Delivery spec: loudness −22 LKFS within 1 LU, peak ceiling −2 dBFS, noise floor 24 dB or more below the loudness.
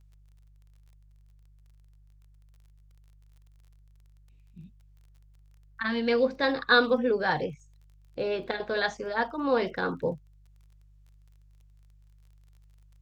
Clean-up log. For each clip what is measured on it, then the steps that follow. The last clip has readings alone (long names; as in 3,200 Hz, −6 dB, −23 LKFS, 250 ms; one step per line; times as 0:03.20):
crackle rate 30 per second; mains hum 50 Hz; hum harmonics up to 150 Hz; level of the hum −54 dBFS; integrated loudness −27.5 LKFS; sample peak −9.0 dBFS; target loudness −22.0 LKFS
→ click removal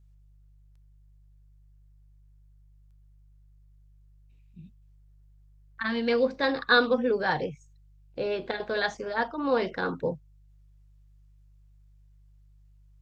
crackle rate 0.077 per second; mains hum 50 Hz; hum harmonics up to 150 Hz; level of the hum −54 dBFS
→ hum removal 50 Hz, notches 3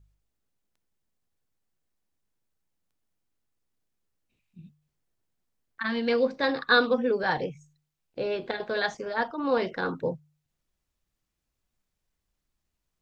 mains hum none found; integrated loudness −27.5 LKFS; sample peak −9.0 dBFS; target loudness −22.0 LKFS
→ level +5.5 dB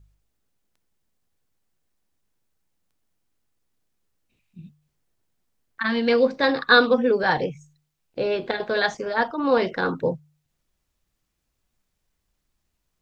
integrated loudness −22.0 LKFS; sample peak −3.5 dBFS; background noise floor −77 dBFS